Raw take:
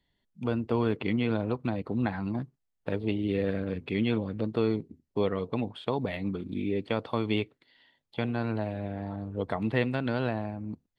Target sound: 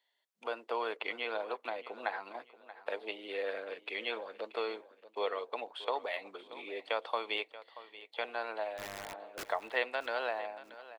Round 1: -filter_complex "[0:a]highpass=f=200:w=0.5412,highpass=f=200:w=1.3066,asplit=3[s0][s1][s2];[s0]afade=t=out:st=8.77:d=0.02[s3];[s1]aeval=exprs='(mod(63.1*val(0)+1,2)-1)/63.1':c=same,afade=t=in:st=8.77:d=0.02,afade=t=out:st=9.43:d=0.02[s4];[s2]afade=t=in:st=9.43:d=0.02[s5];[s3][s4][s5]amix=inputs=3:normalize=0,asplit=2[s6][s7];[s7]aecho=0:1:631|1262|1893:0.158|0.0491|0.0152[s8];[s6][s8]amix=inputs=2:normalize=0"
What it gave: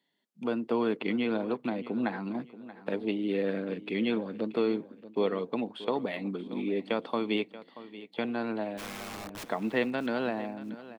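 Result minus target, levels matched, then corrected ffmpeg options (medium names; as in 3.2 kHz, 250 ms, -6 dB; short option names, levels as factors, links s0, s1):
250 Hz band +16.0 dB
-filter_complex "[0:a]highpass=f=550:w=0.5412,highpass=f=550:w=1.3066,asplit=3[s0][s1][s2];[s0]afade=t=out:st=8.77:d=0.02[s3];[s1]aeval=exprs='(mod(63.1*val(0)+1,2)-1)/63.1':c=same,afade=t=in:st=8.77:d=0.02,afade=t=out:st=9.43:d=0.02[s4];[s2]afade=t=in:st=9.43:d=0.02[s5];[s3][s4][s5]amix=inputs=3:normalize=0,asplit=2[s6][s7];[s7]aecho=0:1:631|1262|1893:0.158|0.0491|0.0152[s8];[s6][s8]amix=inputs=2:normalize=0"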